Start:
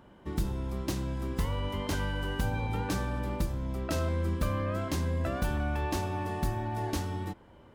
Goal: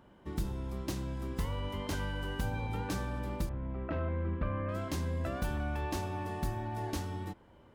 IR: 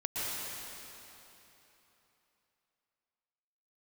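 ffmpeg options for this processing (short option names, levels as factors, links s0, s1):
-filter_complex "[0:a]asettb=1/sr,asplit=3[s0][s1][s2];[s0]atrim=end=3.494[s3];[s1]atrim=start=3.49:end=4.69,asetpts=PTS-STARTPTS,afade=t=in:d=0.004:c=qsin,afade=t=out:st=1.196:d=0.004:c=qsin,lowpass=f=2400:w=0.5412,lowpass=f=2400:w=1.3066[s4];[s2]atrim=start=4.686[s5];[s3][s4]acrossfade=d=0.004:c1=hsin:c2=qsin[s6];[s6][s5]acrossfade=d=0.004:c1=qsin:c2=hsin,volume=0.631"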